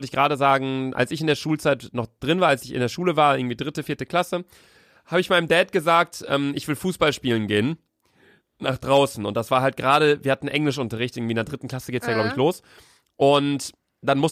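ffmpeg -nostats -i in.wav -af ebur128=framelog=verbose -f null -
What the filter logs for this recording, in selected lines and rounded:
Integrated loudness:
  I:         -22.2 LUFS
  Threshold: -32.7 LUFS
Loudness range:
  LRA:         2.1 LU
  Threshold: -42.7 LUFS
  LRA low:   -23.9 LUFS
  LRA high:  -21.8 LUFS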